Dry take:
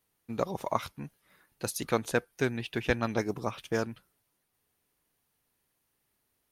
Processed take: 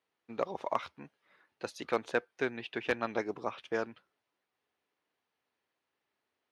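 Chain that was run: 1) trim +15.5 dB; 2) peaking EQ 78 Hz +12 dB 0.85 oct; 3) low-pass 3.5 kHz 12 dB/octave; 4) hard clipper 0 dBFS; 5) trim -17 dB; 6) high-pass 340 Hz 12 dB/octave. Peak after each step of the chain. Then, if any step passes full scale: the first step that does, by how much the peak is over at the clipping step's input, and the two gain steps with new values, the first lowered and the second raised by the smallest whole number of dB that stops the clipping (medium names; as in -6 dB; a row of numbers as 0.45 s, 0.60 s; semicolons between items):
+5.5 dBFS, +6.5 dBFS, +6.0 dBFS, 0.0 dBFS, -17.0 dBFS, -13.0 dBFS; step 1, 6.0 dB; step 1 +9.5 dB, step 5 -11 dB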